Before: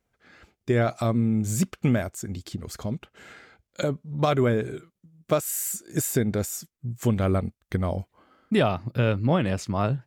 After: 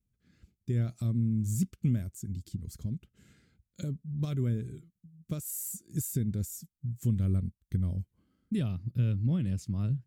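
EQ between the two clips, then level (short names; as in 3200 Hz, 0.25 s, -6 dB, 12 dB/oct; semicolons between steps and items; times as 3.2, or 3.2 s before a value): dynamic EQ 170 Hz, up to -4 dB, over -35 dBFS, Q 0.98; EQ curve 180 Hz 0 dB, 750 Hz -29 dB, 10000 Hz -7 dB; 0.0 dB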